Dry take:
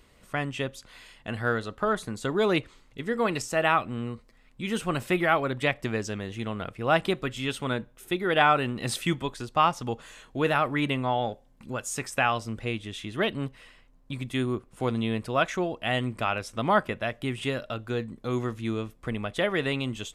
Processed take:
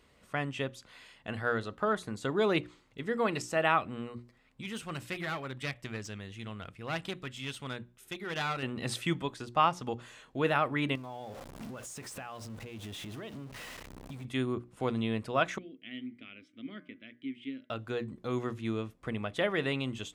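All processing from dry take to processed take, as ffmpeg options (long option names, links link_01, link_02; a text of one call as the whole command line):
ffmpeg -i in.wav -filter_complex "[0:a]asettb=1/sr,asplit=3[link_01][link_02][link_03];[link_01]atrim=end=4.614[link_04];[link_02]atrim=start=4.61:end=8.63,asetpts=PTS-STARTPTS,afade=type=in:duration=0.004:curve=qsin,afade=type=out:start_time=4.016:duration=0.004:curve=qsin,equalizer=frequency=500:width=0.35:gain=-9,aeval=exprs='clip(val(0),-1,0.02)':channel_layout=same[link_05];[link_03]atrim=start=8.626[link_06];[link_04][link_05]acrossfade=duration=0.004:curve1=hsin:curve2=qsin[link_07];[link_07][link_06]acrossfade=duration=0.004:curve1=qsin:curve2=hsin,asettb=1/sr,asplit=3[link_08][link_09][link_10];[link_08]atrim=end=10.954[link_11];[link_09]atrim=start=10.95:end=14.25,asetpts=PTS-STARTPTS,afade=type=in:duration=0.004:curve=qsin,afade=type=out:start_time=3.296:duration=0.004:curve=qsin,aeval=exprs='val(0)+0.5*0.0224*sgn(val(0))':channel_layout=same,equalizer=frequency=2500:width=0.55:gain=-3.5,acompressor=threshold=-35dB:ratio=10:attack=3.2:release=140:knee=1:detection=peak[link_12];[link_10]atrim=start=14.246[link_13];[link_11][link_12]acrossfade=duration=0.004:curve1=hsin:curve2=qsin[link_14];[link_14][link_13]acrossfade=duration=0.004:curve1=qsin:curve2=hsin,asettb=1/sr,asplit=3[link_15][link_16][link_17];[link_15]atrim=end=15.584[link_18];[link_16]atrim=start=15.58:end=17.7,asetpts=PTS-STARTPTS,afade=type=in:duration=0.004:curve=qsin,afade=type=out:start_time=2.116:duration=0.004:curve=qsin,asplit=3[link_19][link_20][link_21];[link_19]bandpass=frequency=270:width_type=q:width=8,volume=0dB[link_22];[link_20]bandpass=frequency=2290:width_type=q:width=8,volume=-6dB[link_23];[link_21]bandpass=frequency=3010:width_type=q:width=8,volume=-9dB[link_24];[link_22][link_23][link_24]amix=inputs=3:normalize=0,bandreject=frequency=152:width_type=h:width=4,bandreject=frequency=304:width_type=h:width=4,bandreject=frequency=456:width_type=h:width=4,bandreject=frequency=608:width_type=h:width=4,bandreject=frequency=760:width_type=h:width=4,bandreject=frequency=912:width_type=h:width=4,bandreject=frequency=1064:width_type=h:width=4,bandreject=frequency=1216:width_type=h:width=4,bandreject=frequency=1368:width_type=h:width=4,bandreject=frequency=1520:width_type=h:width=4,bandreject=frequency=1672:width_type=h:width=4,bandreject=frequency=1824:width_type=h:width=4,bandreject=frequency=1976:width_type=h:width=4,bandreject=frequency=2128:width_type=h:width=4[link_25];[link_17]atrim=start=17.696[link_26];[link_18][link_25]acrossfade=duration=0.004:curve1=hsin:curve2=qsin[link_27];[link_27][link_26]acrossfade=duration=0.004:curve1=qsin:curve2=hsin,highpass=59,highshelf=frequency=8300:gain=-7,bandreject=frequency=60:width_type=h:width=6,bandreject=frequency=120:width_type=h:width=6,bandreject=frequency=180:width_type=h:width=6,bandreject=frequency=240:width_type=h:width=6,bandreject=frequency=300:width_type=h:width=6,bandreject=frequency=360:width_type=h:width=6,volume=-3.5dB" out.wav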